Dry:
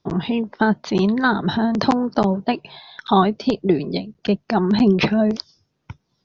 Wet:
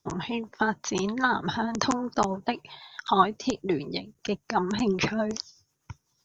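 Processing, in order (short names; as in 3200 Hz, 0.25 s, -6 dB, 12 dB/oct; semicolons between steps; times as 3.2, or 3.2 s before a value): EQ curve 130 Hz 0 dB, 200 Hz -7 dB, 280 Hz -2 dB, 650 Hz -2 dB, 920 Hz +7 dB, 4500 Hz -3 dB, 6500 Hz +14 dB; rotary speaker horn 8 Hz; high shelf 3200 Hz +7.5 dB; gain -5 dB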